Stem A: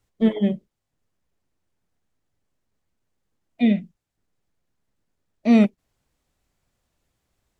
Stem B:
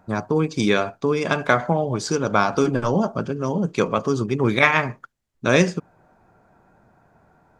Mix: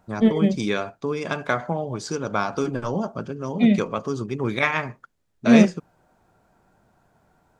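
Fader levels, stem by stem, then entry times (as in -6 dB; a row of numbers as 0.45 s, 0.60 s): +1.0 dB, -5.5 dB; 0.00 s, 0.00 s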